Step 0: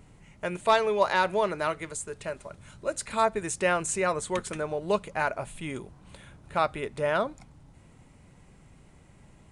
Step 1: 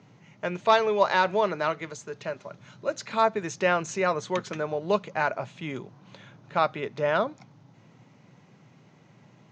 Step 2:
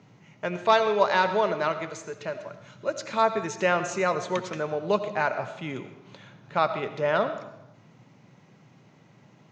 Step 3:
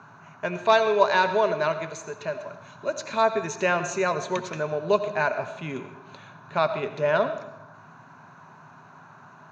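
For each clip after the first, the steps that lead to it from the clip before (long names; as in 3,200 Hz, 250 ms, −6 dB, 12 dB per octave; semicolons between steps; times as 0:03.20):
Chebyshev band-pass filter 110–6,400 Hz, order 5; level +2 dB
convolution reverb RT60 0.90 s, pre-delay 45 ms, DRR 10 dB
noise in a band 690–1,500 Hz −51 dBFS; EQ curve with evenly spaced ripples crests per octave 1.5, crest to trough 7 dB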